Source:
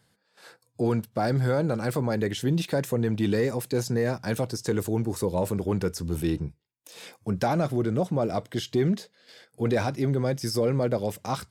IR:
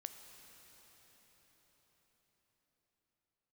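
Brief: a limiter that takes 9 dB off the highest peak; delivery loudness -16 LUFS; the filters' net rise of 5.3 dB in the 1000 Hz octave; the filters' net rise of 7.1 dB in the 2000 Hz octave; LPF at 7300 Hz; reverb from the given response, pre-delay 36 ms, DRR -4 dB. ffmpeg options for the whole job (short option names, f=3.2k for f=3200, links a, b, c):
-filter_complex "[0:a]lowpass=7.3k,equalizer=f=1k:t=o:g=6,equalizer=f=2k:t=o:g=7,alimiter=limit=-19dB:level=0:latency=1,asplit=2[a][b];[1:a]atrim=start_sample=2205,adelay=36[c];[b][c]afir=irnorm=-1:irlink=0,volume=8dB[d];[a][d]amix=inputs=2:normalize=0,volume=8.5dB"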